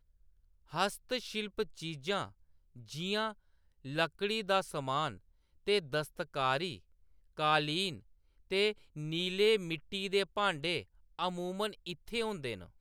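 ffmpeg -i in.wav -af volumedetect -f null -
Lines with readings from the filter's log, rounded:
mean_volume: -35.8 dB
max_volume: -16.3 dB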